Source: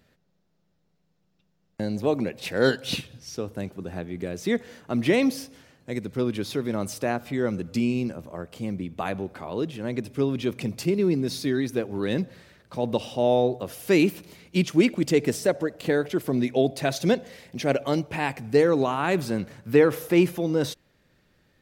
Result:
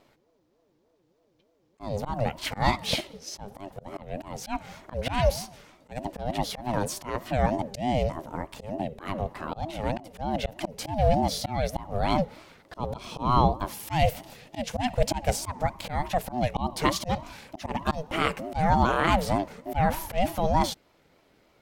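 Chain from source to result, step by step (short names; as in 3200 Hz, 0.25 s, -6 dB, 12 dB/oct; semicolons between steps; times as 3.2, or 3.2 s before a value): auto swell 0.195 s; ring modulator with a swept carrier 400 Hz, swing 25%, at 3.3 Hz; gain +4.5 dB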